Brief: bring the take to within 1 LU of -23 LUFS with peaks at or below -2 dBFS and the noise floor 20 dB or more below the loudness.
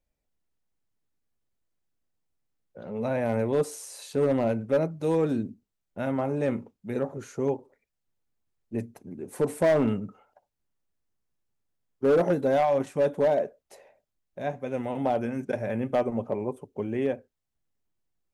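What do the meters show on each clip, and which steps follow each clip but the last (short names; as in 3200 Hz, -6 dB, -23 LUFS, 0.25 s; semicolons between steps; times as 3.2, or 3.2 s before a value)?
clipped 0.7%; flat tops at -17.0 dBFS; loudness -28.0 LUFS; peak -17.0 dBFS; loudness target -23.0 LUFS
-> clip repair -17 dBFS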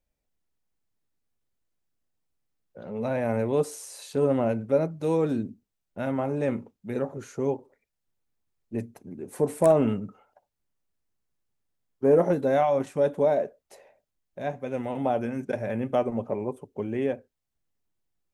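clipped 0.0%; loudness -27.0 LUFS; peak -8.5 dBFS; loudness target -23.0 LUFS
-> gain +4 dB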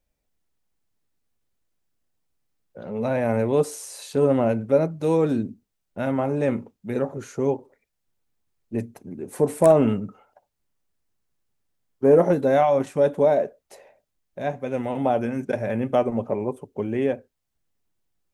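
loudness -23.0 LUFS; peak -4.5 dBFS; noise floor -78 dBFS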